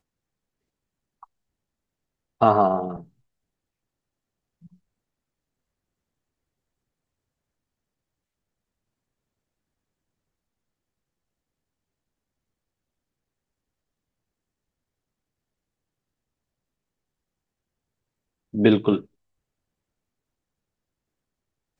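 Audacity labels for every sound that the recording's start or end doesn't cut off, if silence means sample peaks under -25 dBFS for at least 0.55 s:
2.420000	2.940000	sound
18.550000	18.970000	sound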